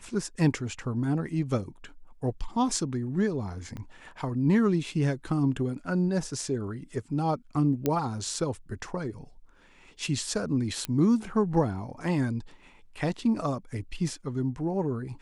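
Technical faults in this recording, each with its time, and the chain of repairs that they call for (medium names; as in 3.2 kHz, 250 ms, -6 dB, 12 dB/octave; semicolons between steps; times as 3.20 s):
3.77 s: pop -26 dBFS
7.86 s: pop -12 dBFS
10.85 s: pop -14 dBFS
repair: de-click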